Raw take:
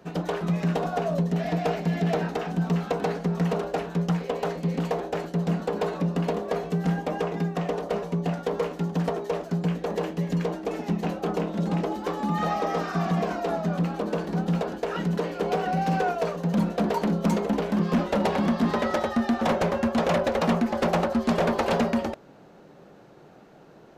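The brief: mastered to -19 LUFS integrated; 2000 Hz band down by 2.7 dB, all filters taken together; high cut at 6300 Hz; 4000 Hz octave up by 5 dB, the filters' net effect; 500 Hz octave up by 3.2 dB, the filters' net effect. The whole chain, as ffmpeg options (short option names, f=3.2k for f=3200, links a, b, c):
-af "lowpass=6.3k,equalizer=f=500:t=o:g=4,equalizer=f=2k:t=o:g=-6,equalizer=f=4k:t=o:g=9,volume=6dB"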